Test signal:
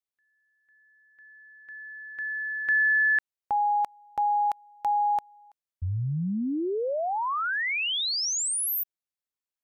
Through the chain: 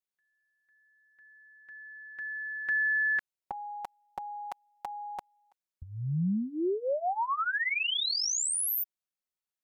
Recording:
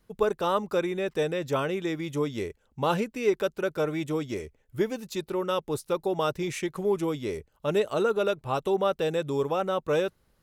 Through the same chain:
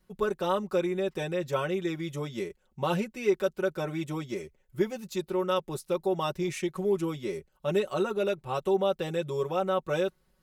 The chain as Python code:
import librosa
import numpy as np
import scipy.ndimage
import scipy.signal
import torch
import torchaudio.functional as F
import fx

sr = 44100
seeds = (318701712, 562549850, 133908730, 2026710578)

y = x + 0.82 * np.pad(x, (int(5.4 * sr / 1000.0), 0))[:len(x)]
y = y * librosa.db_to_amplitude(-4.5)